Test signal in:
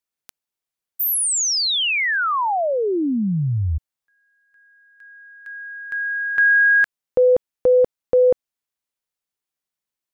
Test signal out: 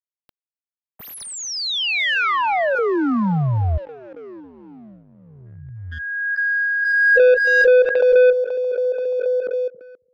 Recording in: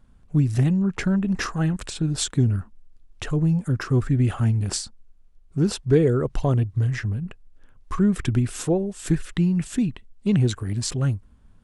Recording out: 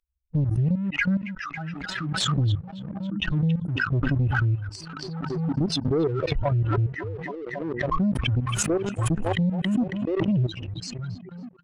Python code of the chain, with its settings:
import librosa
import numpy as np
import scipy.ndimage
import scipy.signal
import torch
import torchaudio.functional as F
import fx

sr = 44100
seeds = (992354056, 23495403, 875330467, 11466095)

p1 = fx.bin_expand(x, sr, power=3.0)
p2 = fx.peak_eq(p1, sr, hz=9800.0, db=9.5, octaves=0.23)
p3 = fx.level_steps(p2, sr, step_db=14)
p4 = p3 + fx.echo_stepped(p3, sr, ms=275, hz=2800.0, octaves=-0.7, feedback_pct=70, wet_db=-3.0, dry=0)
p5 = fx.leveller(p4, sr, passes=2)
p6 = fx.air_absorb(p5, sr, metres=170.0)
p7 = fx.pre_swell(p6, sr, db_per_s=23.0)
y = p7 * librosa.db_to_amplitude(2.0)